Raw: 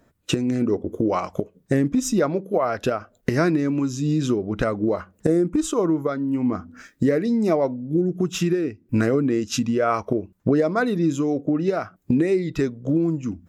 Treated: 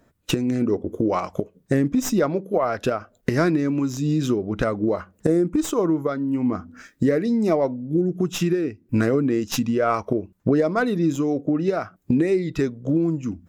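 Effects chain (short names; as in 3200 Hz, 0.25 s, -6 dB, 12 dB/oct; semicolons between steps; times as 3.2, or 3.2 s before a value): tracing distortion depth 0.051 ms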